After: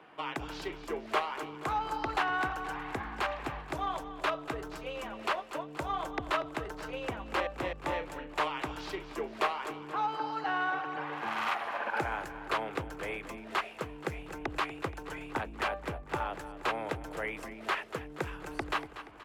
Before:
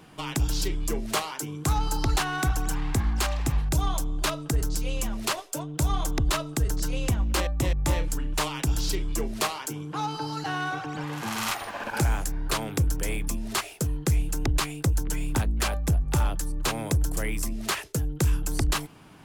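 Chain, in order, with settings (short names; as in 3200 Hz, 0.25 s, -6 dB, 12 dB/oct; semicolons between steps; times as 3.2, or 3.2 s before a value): HPF 87 Hz 6 dB/oct; three-band isolator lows -17 dB, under 360 Hz, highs -24 dB, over 2900 Hz; on a send: feedback echo 0.238 s, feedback 53%, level -13 dB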